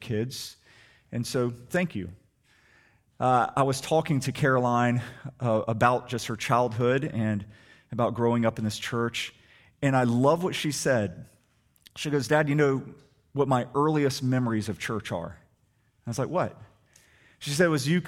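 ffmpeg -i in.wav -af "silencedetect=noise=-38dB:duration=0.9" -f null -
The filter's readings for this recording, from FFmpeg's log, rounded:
silence_start: 2.11
silence_end: 3.20 | silence_duration: 1.09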